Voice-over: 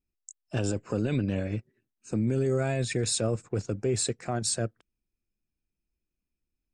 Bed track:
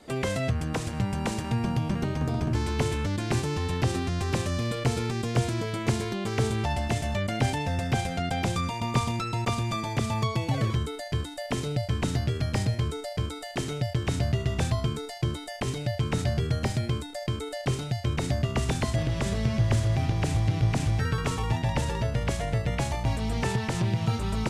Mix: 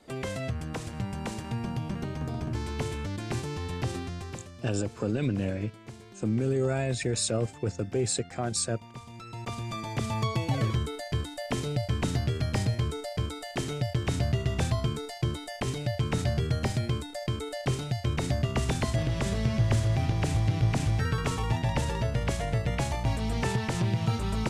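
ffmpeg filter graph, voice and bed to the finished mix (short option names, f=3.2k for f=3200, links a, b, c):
-filter_complex "[0:a]adelay=4100,volume=-0.5dB[a];[1:a]volume=12.5dB,afade=t=out:st=3.95:d=0.57:silence=0.211349,afade=t=in:st=9.06:d=1.28:silence=0.125893[b];[a][b]amix=inputs=2:normalize=0"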